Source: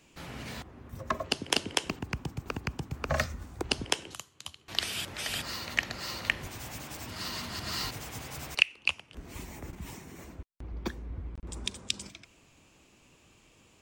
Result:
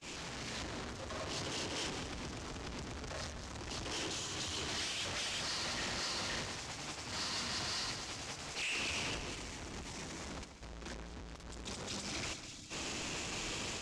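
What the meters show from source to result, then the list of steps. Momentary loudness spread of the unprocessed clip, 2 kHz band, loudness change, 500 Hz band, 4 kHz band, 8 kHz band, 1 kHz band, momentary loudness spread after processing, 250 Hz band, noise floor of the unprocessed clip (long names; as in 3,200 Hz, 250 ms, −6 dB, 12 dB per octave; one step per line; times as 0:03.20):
16 LU, −7.0 dB, −6.0 dB, −4.5 dB, −4.5 dB, −1.0 dB, −4.0 dB, 9 LU, −4.0 dB, −62 dBFS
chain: sign of each sample alone
time-frequency box erased 0:12.34–0:12.70, 340–3,200 Hz
low-pass filter 7,100 Hz 24 dB per octave
noise gate −35 dBFS, range −55 dB
automatic gain control gain up to 4.5 dB
bass and treble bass −3 dB, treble +4 dB
on a send: echo with a time of its own for lows and highs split 2,300 Hz, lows 135 ms, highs 201 ms, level −10 dB
on the sum: level +17 dB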